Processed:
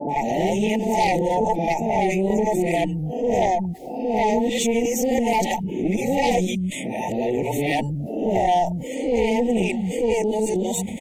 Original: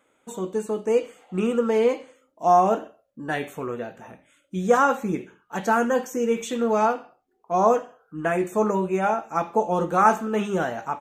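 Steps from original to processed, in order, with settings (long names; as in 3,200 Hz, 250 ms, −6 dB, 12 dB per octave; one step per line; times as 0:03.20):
played backwards from end to start
three-band delay without the direct sound mids, highs, lows 90/230 ms, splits 150/510 Hz
tape wow and flutter 15 cents
harmonic generator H 6 −17 dB, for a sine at −5.5 dBFS
Chebyshev band-stop filter 900–1,900 Hz, order 5
envelope flattener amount 70%
level −2 dB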